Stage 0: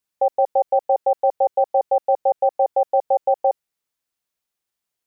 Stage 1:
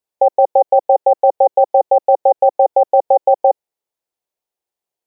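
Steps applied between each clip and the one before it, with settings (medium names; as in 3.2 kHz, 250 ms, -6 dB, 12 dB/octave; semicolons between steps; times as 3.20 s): high-order bell 560 Hz +9.5 dB; level held to a coarse grid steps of 13 dB; trim +3.5 dB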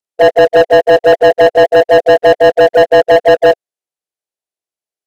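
frequency axis rescaled in octaves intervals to 87%; waveshaping leveller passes 3; trim +1.5 dB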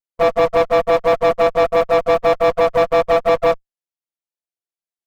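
comb filter that takes the minimum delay 5.8 ms; trim -7 dB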